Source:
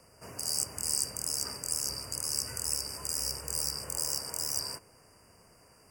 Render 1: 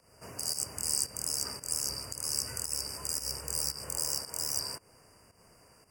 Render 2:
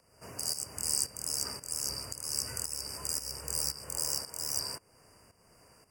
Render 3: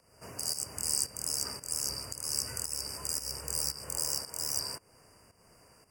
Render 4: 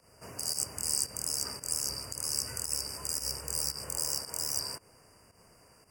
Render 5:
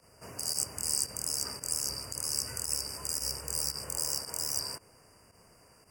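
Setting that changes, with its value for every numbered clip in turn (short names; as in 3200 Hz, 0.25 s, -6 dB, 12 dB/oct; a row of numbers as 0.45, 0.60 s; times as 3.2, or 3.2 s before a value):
pump, release: 185, 440, 299, 123, 71 ms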